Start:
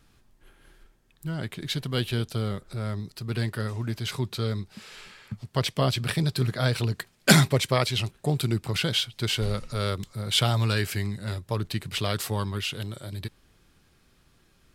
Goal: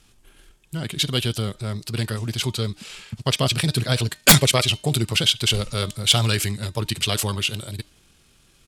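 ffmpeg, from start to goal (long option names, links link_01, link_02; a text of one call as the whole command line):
ffmpeg -i in.wav -af "lowpass=10000,bandreject=frequency=305.4:width_type=h:width=4,bandreject=frequency=610.8:width_type=h:width=4,bandreject=frequency=916.2:width_type=h:width=4,bandreject=frequency=1221.6:width_type=h:width=4,bandreject=frequency=1527:width_type=h:width=4,bandreject=frequency=1832.4:width_type=h:width=4,bandreject=frequency=2137.8:width_type=h:width=4,bandreject=frequency=2443.2:width_type=h:width=4,bandreject=frequency=2748.6:width_type=h:width=4,bandreject=frequency=3054:width_type=h:width=4,bandreject=frequency=3359.4:width_type=h:width=4,bandreject=frequency=3664.8:width_type=h:width=4,bandreject=frequency=3970.2:width_type=h:width=4,bandreject=frequency=4275.6:width_type=h:width=4,bandreject=frequency=4581:width_type=h:width=4,bandreject=frequency=4886.4:width_type=h:width=4,bandreject=frequency=5191.8:width_type=h:width=4,bandreject=frequency=5497.2:width_type=h:width=4,bandreject=frequency=5802.6:width_type=h:width=4,bandreject=frequency=6108:width_type=h:width=4,bandreject=frequency=6413.4:width_type=h:width=4,bandreject=frequency=6718.8:width_type=h:width=4,bandreject=frequency=7024.2:width_type=h:width=4,aexciter=amount=2.8:drive=1.9:freq=2500,aeval=exprs='(mod(1.68*val(0)+1,2)-1)/1.68':channel_layout=same,atempo=1.7,volume=3.5dB" out.wav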